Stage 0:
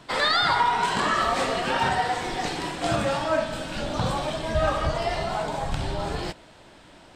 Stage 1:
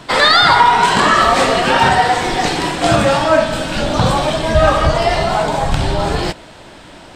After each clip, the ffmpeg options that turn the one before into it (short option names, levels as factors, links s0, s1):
-af "acontrast=56,volume=2"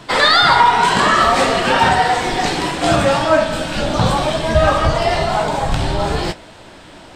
-af "flanger=delay=8.7:depth=9.6:regen=-55:speed=0.61:shape=triangular,volume=1.33"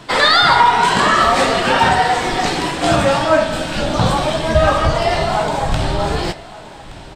-af "aecho=1:1:1171:0.112"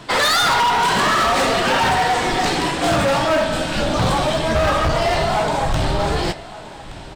-af "asoftclip=type=hard:threshold=0.2"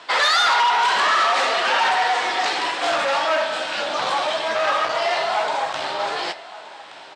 -af "highpass=690,lowpass=5500"